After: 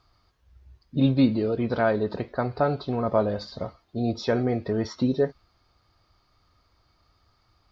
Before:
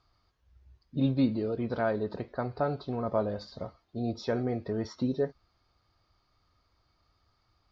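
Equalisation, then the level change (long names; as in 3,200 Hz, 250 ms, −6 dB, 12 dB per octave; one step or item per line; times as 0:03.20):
dynamic equaliser 2,800 Hz, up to +3 dB, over −54 dBFS, Q 1
+6.0 dB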